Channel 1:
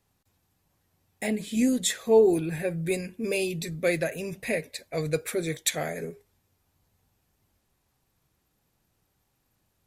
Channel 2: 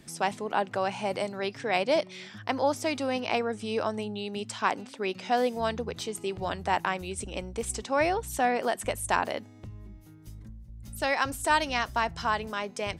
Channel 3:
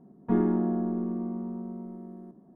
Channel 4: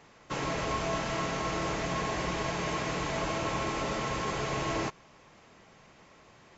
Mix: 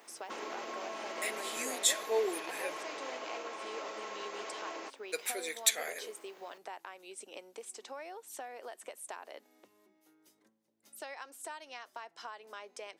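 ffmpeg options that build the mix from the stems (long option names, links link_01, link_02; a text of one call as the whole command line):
ffmpeg -i stem1.wav -i stem2.wav -i stem3.wav -i stem4.wav -filter_complex "[0:a]tiltshelf=frequency=940:gain=-7.5,volume=-7.5dB,asplit=3[link_01][link_02][link_03];[link_01]atrim=end=2.76,asetpts=PTS-STARTPTS,afade=type=out:start_time=2.756:duration=0.004:curve=hsin[link_04];[link_02]atrim=start=2.76:end=5.12,asetpts=PTS-STARTPTS,volume=0[link_05];[link_03]atrim=start=5.12,asetpts=PTS-STARTPTS,afade=type=in:duration=0.004:curve=hsin[link_06];[link_04][link_05][link_06]concat=n=3:v=0:a=1[link_07];[1:a]acompressor=threshold=-33dB:ratio=16,volume=-7.5dB[link_08];[2:a]acompressor=threshold=-31dB:ratio=6,volume=-10.5dB[link_09];[3:a]alimiter=level_in=6dB:limit=-24dB:level=0:latency=1:release=338,volume=-6dB,aexciter=amount=13.3:drive=5.5:freq=11000,volume=-2dB[link_10];[link_07][link_08][link_09][link_10]amix=inputs=4:normalize=0,highpass=frequency=350:width=0.5412,highpass=frequency=350:width=1.3066" out.wav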